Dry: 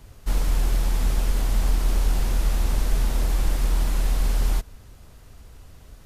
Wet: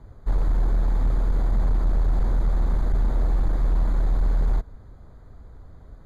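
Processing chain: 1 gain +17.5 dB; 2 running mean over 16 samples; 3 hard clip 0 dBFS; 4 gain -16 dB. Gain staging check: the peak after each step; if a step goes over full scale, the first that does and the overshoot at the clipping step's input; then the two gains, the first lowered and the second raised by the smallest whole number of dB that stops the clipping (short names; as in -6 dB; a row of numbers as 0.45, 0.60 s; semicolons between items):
+8.0, +7.5, 0.0, -16.0 dBFS; step 1, 7.5 dB; step 1 +9.5 dB, step 4 -8 dB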